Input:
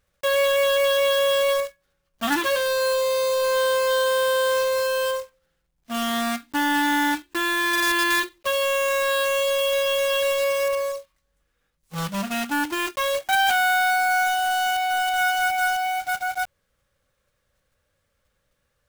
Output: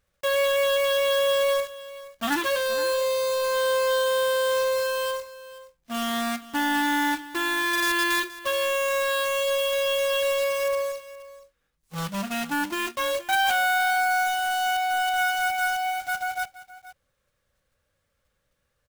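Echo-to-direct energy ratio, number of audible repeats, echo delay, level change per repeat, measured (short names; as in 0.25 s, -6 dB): -17.0 dB, 1, 0.473 s, no steady repeat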